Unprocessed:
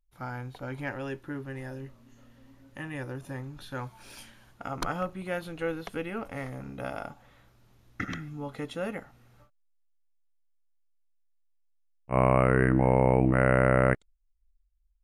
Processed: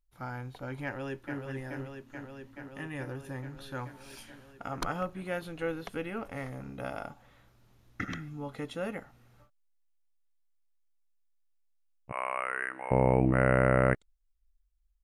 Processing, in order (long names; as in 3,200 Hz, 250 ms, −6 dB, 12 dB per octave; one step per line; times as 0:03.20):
0:00.84–0:01.39: delay throw 430 ms, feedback 80%, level −5.5 dB
0:12.12–0:12.91: high-pass filter 1,200 Hz 12 dB per octave
level −2 dB